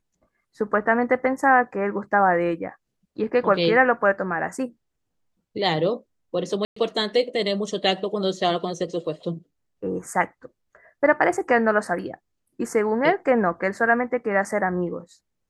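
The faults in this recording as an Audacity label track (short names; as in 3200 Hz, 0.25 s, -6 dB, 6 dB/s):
6.650000	6.760000	gap 0.114 s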